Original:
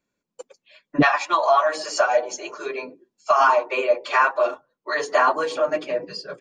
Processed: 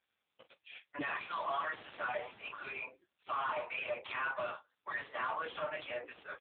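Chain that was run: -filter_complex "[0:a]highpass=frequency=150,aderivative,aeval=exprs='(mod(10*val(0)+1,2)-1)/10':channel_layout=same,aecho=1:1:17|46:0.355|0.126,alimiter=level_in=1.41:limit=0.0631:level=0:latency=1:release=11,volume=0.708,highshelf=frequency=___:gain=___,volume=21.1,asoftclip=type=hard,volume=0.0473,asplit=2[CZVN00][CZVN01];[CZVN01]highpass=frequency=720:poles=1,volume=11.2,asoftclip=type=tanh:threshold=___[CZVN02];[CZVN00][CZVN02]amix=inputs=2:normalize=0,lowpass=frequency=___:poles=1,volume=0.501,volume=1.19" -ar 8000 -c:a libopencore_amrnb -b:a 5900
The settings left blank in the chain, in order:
3k, 10.5, 0.0473, 1.2k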